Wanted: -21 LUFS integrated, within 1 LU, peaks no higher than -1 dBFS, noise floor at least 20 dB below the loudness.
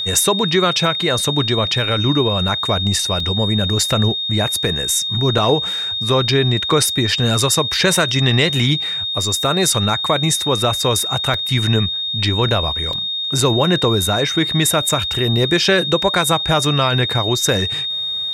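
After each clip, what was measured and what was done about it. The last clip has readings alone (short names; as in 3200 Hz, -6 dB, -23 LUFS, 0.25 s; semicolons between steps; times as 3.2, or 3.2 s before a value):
dropouts 4; longest dropout 2.9 ms; steady tone 3700 Hz; tone level -20 dBFS; loudness -16.0 LUFS; peak -2.0 dBFS; loudness target -21.0 LUFS
-> interpolate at 3.2/5.38/11.34/12.93, 2.9 ms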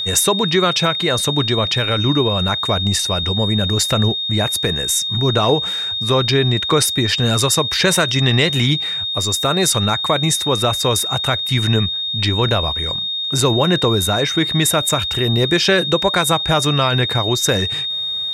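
dropouts 0; steady tone 3700 Hz; tone level -20 dBFS
-> notch 3700 Hz, Q 30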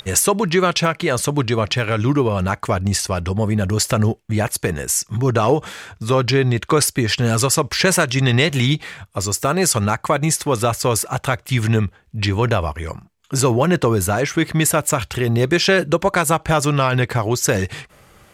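steady tone none; loudness -18.5 LUFS; peak -2.5 dBFS; loudness target -21.0 LUFS
-> gain -2.5 dB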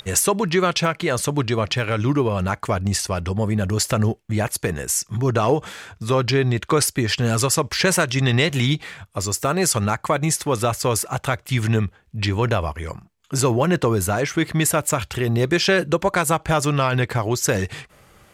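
loudness -21.0 LUFS; peak -5.0 dBFS; noise floor -55 dBFS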